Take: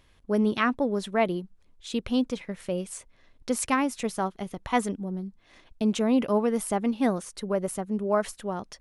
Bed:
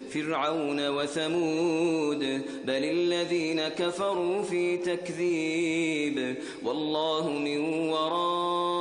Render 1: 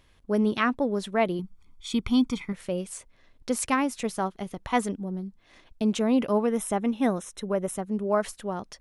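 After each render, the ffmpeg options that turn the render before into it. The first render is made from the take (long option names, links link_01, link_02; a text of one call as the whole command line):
ffmpeg -i in.wav -filter_complex "[0:a]asettb=1/sr,asplit=3[link_01][link_02][link_03];[link_01]atrim=end=1.394[link_04];[link_02]atrim=start=1.39:end=2.53,asetpts=PTS-STARTPTS,afade=type=in:duration=0.004:curve=qsin,afade=type=out:start_time=1.136:duration=0.004:curve=qsin,aecho=1:1:0.9:0.94,atrim=end_sample=50274[link_05];[link_03]atrim=start=2.526[link_06];[link_04][link_05]acrossfade=duration=0.004:curve1=hsin:curve2=qsin[link_07];[link_07][link_06]acrossfade=duration=0.004:curve1=qsin:curve2=hsin,asplit=3[link_08][link_09][link_10];[link_08]afade=type=out:start_time=6.46:duration=0.02[link_11];[link_09]asuperstop=centerf=4600:order=20:qfactor=5.7,afade=type=in:start_time=6.46:duration=0.02,afade=type=out:start_time=7.76:duration=0.02[link_12];[link_10]afade=type=in:start_time=7.76:duration=0.02[link_13];[link_11][link_12][link_13]amix=inputs=3:normalize=0" out.wav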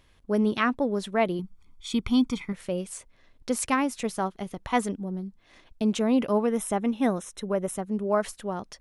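ffmpeg -i in.wav -af anull out.wav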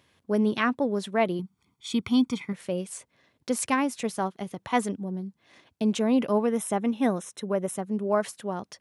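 ffmpeg -i in.wav -af "highpass=frequency=97:width=0.5412,highpass=frequency=97:width=1.3066,bandreject=frequency=1300:width=23" out.wav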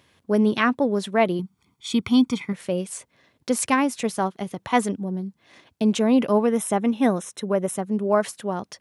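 ffmpeg -i in.wav -af "volume=4.5dB" out.wav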